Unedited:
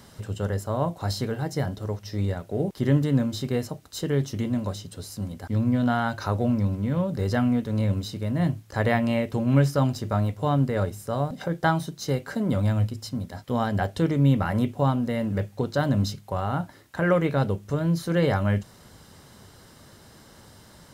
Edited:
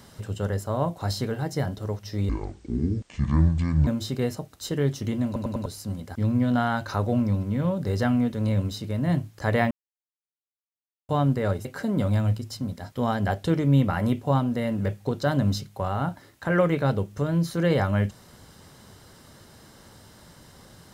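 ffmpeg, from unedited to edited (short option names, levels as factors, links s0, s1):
-filter_complex "[0:a]asplit=10[s0][s1][s2][s3][s4][s5][s6][s7][s8][s9];[s0]atrim=end=2.294[s10];[s1]atrim=start=2.29:end=3.19,asetpts=PTS-STARTPTS,asetrate=25137,aresample=44100[s11];[s2]atrim=start=3.186:end=4.682[s12];[s3]atrim=start=4.578:end=4.682[s13];[s4]atrim=start=4.578:end=4.682[s14];[s5]atrim=start=4.578:end=4.682[s15];[s6]atrim=start=4.978:end=9.03,asetpts=PTS-STARTPTS,afade=t=out:st=4.048:d=0.004:c=hsin[s16];[s7]atrim=start=9.03:end=10.41,asetpts=PTS-STARTPTS,volume=0[s17];[s8]atrim=start=10.41:end=10.972,asetpts=PTS-STARTPTS,afade=t=in:d=0.004:c=hsin[s18];[s9]atrim=start=12.168[s19];[s10][s11]acrossfade=d=0.004:c1=hsin:c2=hsin[s20];[s20][s12]acrossfade=d=0.004:c1=hsin:c2=hsin[s21];[s21][s13]acrossfade=d=0.004:c1=hsin:c2=hsin[s22];[s22][s14]acrossfade=d=0.004:c1=hsin:c2=hsin[s23];[s23][s15]acrossfade=d=0.004:c1=hsin:c2=hsin[s24];[s16][s17][s18]concat=n=3:v=0:a=1[s25];[s24][s25]acrossfade=d=0.004:c1=hsin:c2=hsin[s26];[s26][s19]acrossfade=d=0.004:c1=hsin:c2=hsin"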